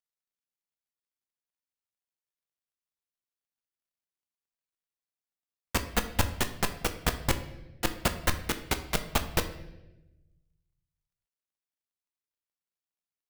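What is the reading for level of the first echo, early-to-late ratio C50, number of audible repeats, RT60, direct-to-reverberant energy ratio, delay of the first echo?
no echo audible, 11.5 dB, no echo audible, 1.0 s, 7.5 dB, no echo audible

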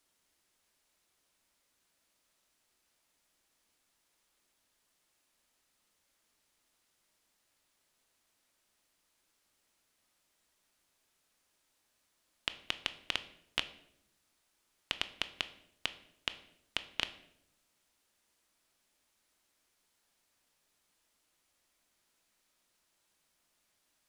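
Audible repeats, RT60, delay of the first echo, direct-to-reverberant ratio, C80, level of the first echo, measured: no echo audible, 0.75 s, no echo audible, 10.0 dB, 17.0 dB, no echo audible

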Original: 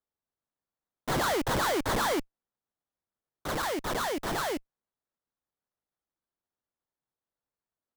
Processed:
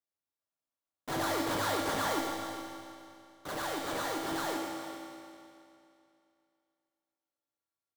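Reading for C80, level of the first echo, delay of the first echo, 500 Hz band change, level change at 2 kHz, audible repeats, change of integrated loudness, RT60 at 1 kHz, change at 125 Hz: 1.0 dB, −7.5 dB, 115 ms, −4.0 dB, −4.0 dB, 2, −4.5 dB, 2.6 s, −6.5 dB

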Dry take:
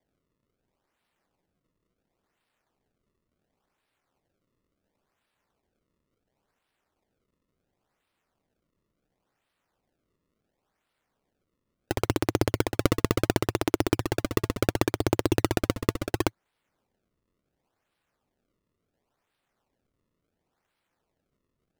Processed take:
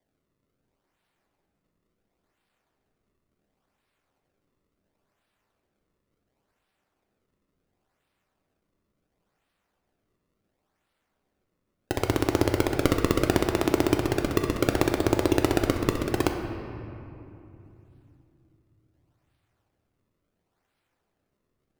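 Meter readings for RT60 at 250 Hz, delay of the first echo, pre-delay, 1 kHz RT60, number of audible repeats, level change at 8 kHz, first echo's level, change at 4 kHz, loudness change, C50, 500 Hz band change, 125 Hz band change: 4.0 s, no echo audible, 3 ms, 2.7 s, no echo audible, +0.5 dB, no echo audible, +1.0 dB, +2.0 dB, 5.5 dB, +2.5 dB, +0.5 dB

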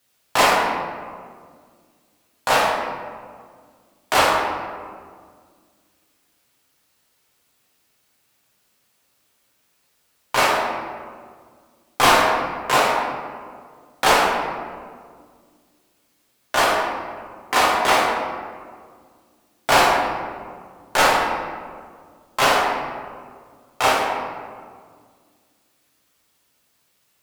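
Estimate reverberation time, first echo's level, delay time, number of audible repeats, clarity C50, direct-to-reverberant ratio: 1.9 s, no echo audible, no echo audible, no echo audible, 0.5 dB, −4.5 dB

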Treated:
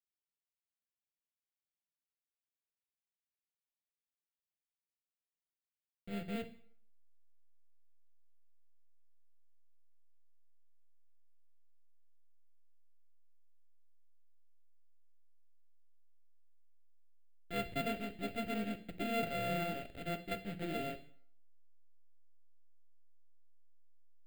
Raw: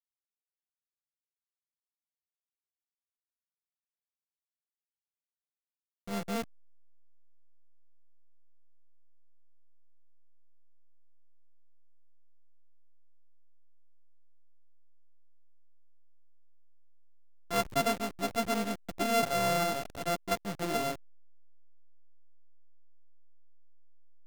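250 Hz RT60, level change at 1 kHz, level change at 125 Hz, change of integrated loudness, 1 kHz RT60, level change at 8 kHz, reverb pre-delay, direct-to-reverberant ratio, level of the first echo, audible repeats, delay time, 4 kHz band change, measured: 0.55 s, −10.0 dB, −4.0 dB, −7.5 dB, 0.60 s, −17.5 dB, 7 ms, 10.0 dB, no echo audible, no echo audible, no echo audible, −9.0 dB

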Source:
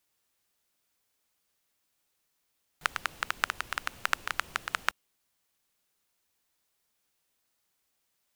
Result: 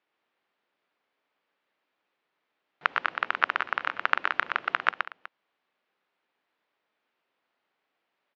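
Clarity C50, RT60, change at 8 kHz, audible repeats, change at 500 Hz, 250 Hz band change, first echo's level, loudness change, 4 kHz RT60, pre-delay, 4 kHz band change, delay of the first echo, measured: no reverb audible, no reverb audible, below −20 dB, 3, +7.0 dB, +3.5 dB, −5.0 dB, +5.0 dB, no reverb audible, no reverb audible, −0.5 dB, 121 ms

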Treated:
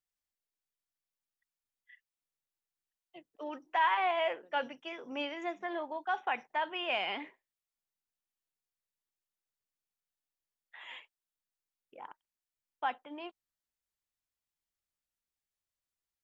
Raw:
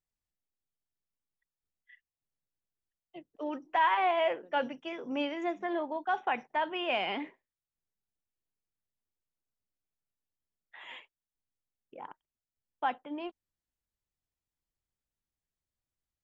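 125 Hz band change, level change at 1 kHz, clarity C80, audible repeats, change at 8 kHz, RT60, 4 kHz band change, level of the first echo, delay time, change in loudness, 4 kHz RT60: can't be measured, −2.5 dB, no reverb audible, no echo audible, can't be measured, no reverb audible, −0.5 dB, no echo audible, no echo audible, −2.5 dB, no reverb audible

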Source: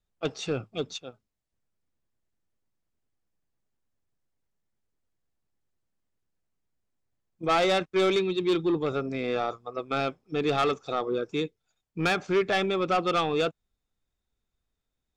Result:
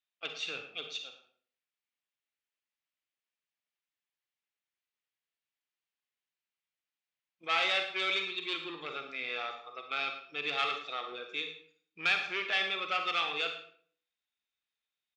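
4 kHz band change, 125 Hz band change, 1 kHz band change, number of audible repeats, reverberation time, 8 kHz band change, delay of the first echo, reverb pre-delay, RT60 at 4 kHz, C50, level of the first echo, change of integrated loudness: +1.0 dB, −24.0 dB, −7.5 dB, 1, 0.55 s, −8.0 dB, 110 ms, 38 ms, 0.40 s, 7.0 dB, −14.0 dB, −5.5 dB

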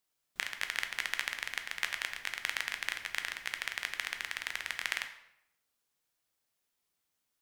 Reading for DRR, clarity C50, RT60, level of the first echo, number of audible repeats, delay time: 6.0 dB, 9.5 dB, 0.80 s, no echo audible, no echo audible, no echo audible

